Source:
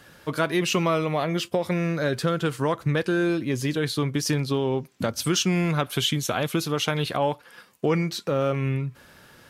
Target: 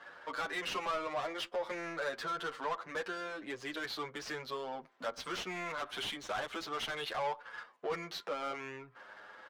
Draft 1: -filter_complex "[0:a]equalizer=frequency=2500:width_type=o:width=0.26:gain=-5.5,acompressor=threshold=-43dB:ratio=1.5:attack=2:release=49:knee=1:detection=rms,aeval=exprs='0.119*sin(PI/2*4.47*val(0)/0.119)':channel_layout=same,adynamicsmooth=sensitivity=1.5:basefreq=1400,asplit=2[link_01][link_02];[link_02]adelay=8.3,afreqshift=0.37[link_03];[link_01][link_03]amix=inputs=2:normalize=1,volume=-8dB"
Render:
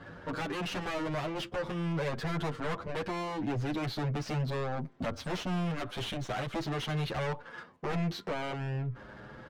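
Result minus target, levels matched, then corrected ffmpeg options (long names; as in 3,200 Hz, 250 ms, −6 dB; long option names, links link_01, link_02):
1,000 Hz band −3.5 dB
-filter_complex "[0:a]equalizer=frequency=2500:width_type=o:width=0.26:gain=-5.5,acompressor=threshold=-43dB:ratio=1.5:attack=2:release=49:knee=1:detection=rms,highpass=780,aeval=exprs='0.119*sin(PI/2*4.47*val(0)/0.119)':channel_layout=same,adynamicsmooth=sensitivity=1.5:basefreq=1400,asplit=2[link_01][link_02];[link_02]adelay=8.3,afreqshift=0.37[link_03];[link_01][link_03]amix=inputs=2:normalize=1,volume=-8dB"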